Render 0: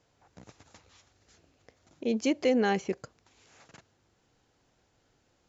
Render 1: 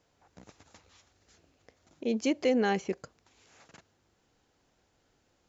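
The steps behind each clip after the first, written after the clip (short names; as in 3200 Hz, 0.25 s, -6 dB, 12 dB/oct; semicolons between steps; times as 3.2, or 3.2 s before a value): bell 120 Hz -8 dB 0.22 oct; gain -1 dB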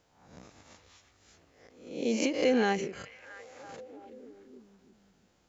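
spectral swells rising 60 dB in 0.61 s; delay with a stepping band-pass 0.334 s, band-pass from 2600 Hz, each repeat -0.7 oct, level -11 dB; ending taper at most 120 dB/s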